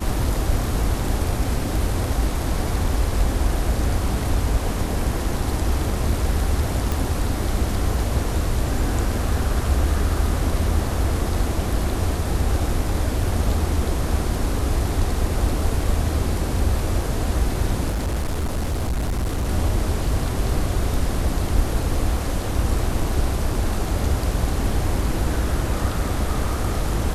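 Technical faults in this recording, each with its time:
6.92 s: pop
17.89–19.49 s: clipped -19.5 dBFS

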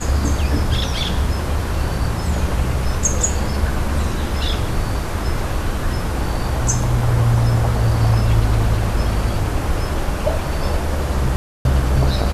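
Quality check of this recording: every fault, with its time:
11.36–11.65 s: dropout 291 ms

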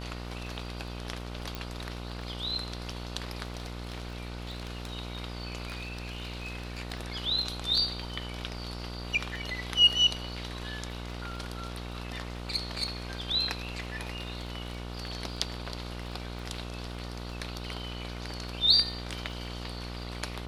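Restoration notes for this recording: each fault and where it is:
buzz 60 Hz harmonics 25 -39 dBFS
crackle 14 per s -41 dBFS
1.55 s: pop
3.57–4.92 s: clipped -32.5 dBFS
5.68–6.79 s: clipped -33 dBFS

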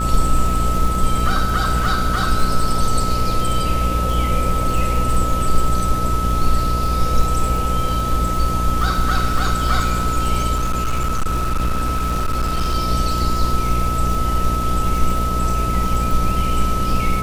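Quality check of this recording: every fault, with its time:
buzz 60 Hz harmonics 11 -22 dBFS
crackle 80 per s -23 dBFS
whine 1.3 kHz -22 dBFS
10.55–12.75 s: clipped -15 dBFS

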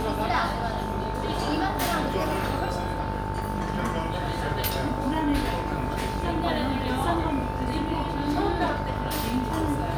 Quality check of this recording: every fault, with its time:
buzz 50 Hz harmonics 34 -32 dBFS
whine 890 Hz -33 dBFS

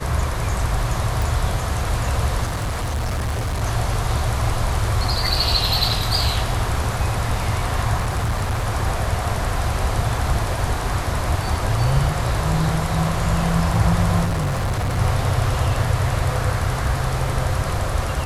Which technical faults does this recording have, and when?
1.22 s: pop
2.45–3.64 s: clipped -20 dBFS
7.98–8.66 s: clipped -17.5 dBFS
14.24–14.99 s: clipped -18.5 dBFS

